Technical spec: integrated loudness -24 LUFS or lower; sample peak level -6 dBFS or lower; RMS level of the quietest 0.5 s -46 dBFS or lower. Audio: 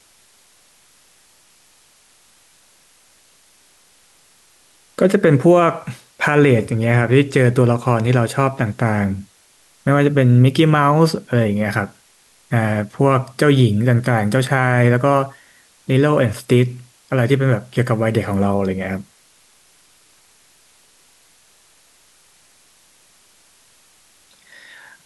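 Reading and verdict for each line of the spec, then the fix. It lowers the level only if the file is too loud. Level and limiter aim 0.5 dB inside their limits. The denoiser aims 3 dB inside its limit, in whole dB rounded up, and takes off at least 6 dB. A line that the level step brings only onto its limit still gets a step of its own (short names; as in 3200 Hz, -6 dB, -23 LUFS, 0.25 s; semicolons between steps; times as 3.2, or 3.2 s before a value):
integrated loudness -16.5 LUFS: fail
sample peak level -2.0 dBFS: fail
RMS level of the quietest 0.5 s -54 dBFS: OK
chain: gain -8 dB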